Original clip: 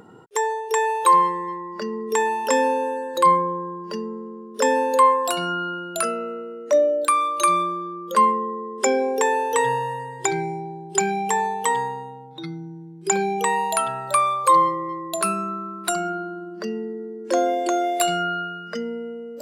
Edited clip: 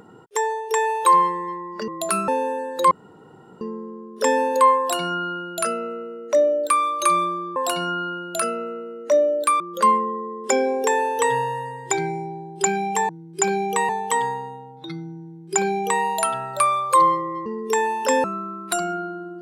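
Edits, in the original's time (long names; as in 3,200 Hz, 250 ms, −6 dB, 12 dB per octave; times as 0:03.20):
0:01.88–0:02.66: swap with 0:15.00–0:15.40
0:03.29–0:03.99: fill with room tone
0:05.17–0:07.21: duplicate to 0:07.94
0:12.77–0:13.57: duplicate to 0:11.43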